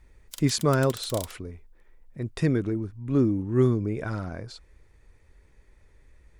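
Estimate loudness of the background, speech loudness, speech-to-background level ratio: -41.5 LUFS, -26.5 LUFS, 15.0 dB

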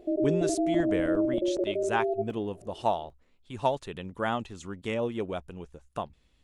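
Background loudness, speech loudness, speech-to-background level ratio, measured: -29.0 LUFS, -32.5 LUFS, -3.5 dB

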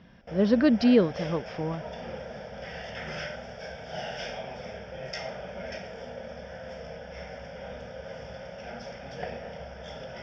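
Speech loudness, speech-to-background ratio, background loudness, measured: -24.5 LUFS, 14.5 dB, -39.0 LUFS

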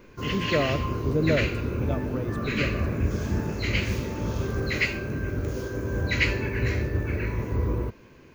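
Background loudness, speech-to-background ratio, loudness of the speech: -28.0 LUFS, -2.5 dB, -30.5 LUFS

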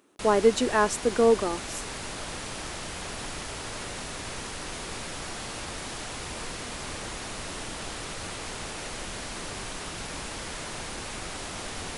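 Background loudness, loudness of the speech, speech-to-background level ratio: -35.5 LUFS, -24.0 LUFS, 11.5 dB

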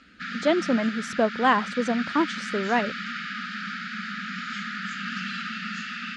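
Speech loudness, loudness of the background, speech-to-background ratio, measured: -25.5 LUFS, -32.0 LUFS, 6.5 dB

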